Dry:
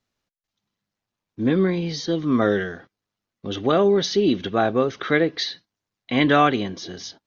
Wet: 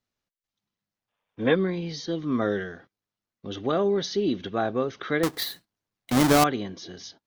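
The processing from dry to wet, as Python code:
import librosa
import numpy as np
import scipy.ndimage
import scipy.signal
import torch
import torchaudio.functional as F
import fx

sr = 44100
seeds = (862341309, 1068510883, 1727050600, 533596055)

y = fx.halfwave_hold(x, sr, at=(5.23, 6.44))
y = fx.dynamic_eq(y, sr, hz=2600.0, q=2.4, threshold_db=-37.0, ratio=4.0, max_db=-5)
y = fx.spec_box(y, sr, start_s=1.09, length_s=0.46, low_hz=430.0, high_hz=3700.0, gain_db=12)
y = y * librosa.db_to_amplitude(-6.0)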